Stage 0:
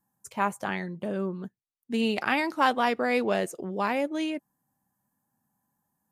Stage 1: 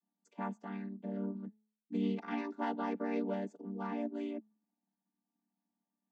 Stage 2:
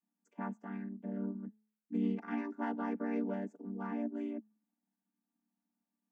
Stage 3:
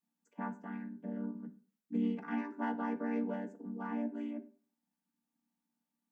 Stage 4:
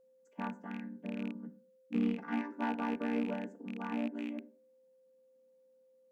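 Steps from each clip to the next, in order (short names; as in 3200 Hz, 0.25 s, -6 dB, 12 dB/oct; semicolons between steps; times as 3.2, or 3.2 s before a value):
chord vocoder minor triad, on G3; de-hum 214.3 Hz, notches 4; gain -9 dB
fifteen-band EQ 250 Hz +6 dB, 1600 Hz +5 dB, 4000 Hz -12 dB; gain -3.5 dB
reverb RT60 0.45 s, pre-delay 3 ms, DRR 7 dB
rattling part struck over -41 dBFS, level -37 dBFS; whine 520 Hz -64 dBFS; added harmonics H 7 -32 dB, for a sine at -23 dBFS; gain +1.5 dB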